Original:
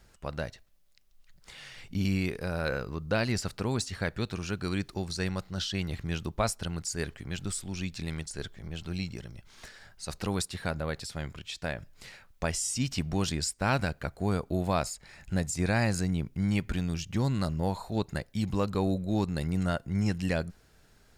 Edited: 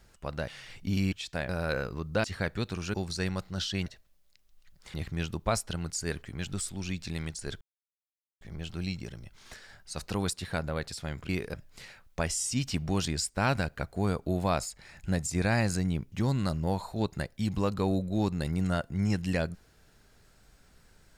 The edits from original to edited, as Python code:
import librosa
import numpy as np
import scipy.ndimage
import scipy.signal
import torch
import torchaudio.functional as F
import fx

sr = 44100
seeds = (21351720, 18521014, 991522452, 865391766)

y = fx.edit(x, sr, fx.move(start_s=0.48, length_s=1.08, to_s=5.86),
    fx.swap(start_s=2.2, length_s=0.25, other_s=11.41, other_length_s=0.37),
    fx.cut(start_s=3.2, length_s=0.65),
    fx.cut(start_s=4.55, length_s=0.39),
    fx.insert_silence(at_s=8.53, length_s=0.8),
    fx.cut(start_s=16.36, length_s=0.72), tone=tone)